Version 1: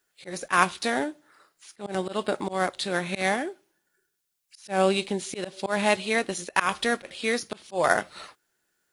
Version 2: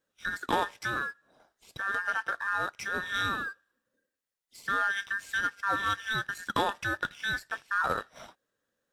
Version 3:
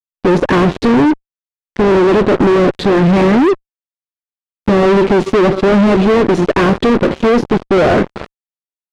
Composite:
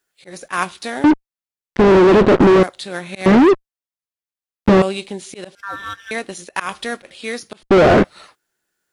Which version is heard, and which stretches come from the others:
1
1.04–2.63 s: from 3
3.26–4.82 s: from 3
5.55–6.11 s: from 2
7.63–8.04 s: from 3

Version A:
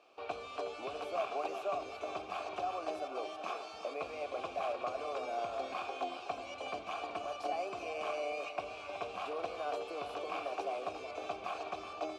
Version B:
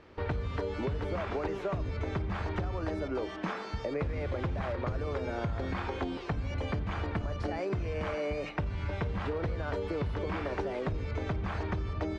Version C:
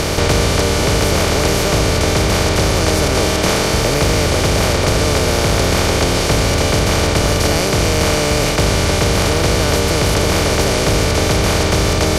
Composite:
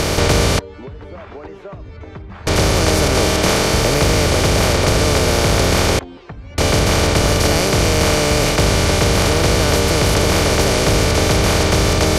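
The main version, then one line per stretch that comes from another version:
C
0.59–2.47 s: from B
5.99–6.58 s: from B
not used: A

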